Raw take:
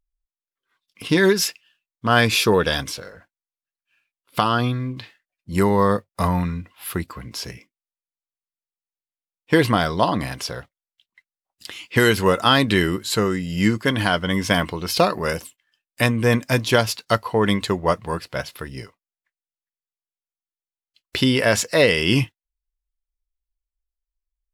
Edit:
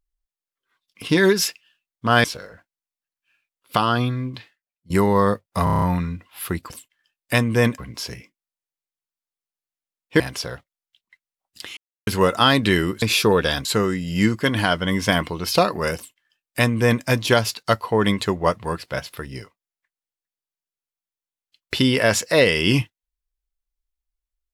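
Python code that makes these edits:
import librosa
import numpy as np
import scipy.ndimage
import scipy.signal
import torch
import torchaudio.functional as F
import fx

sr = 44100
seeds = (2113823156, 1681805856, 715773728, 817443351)

y = fx.edit(x, sr, fx.move(start_s=2.24, length_s=0.63, to_s=13.07),
    fx.fade_out_to(start_s=4.96, length_s=0.57, curve='qua', floor_db=-18.5),
    fx.stutter(start_s=6.27, slice_s=0.03, count=7),
    fx.cut(start_s=9.57, length_s=0.68),
    fx.silence(start_s=11.82, length_s=0.3),
    fx.duplicate(start_s=15.38, length_s=1.08, to_s=7.15), tone=tone)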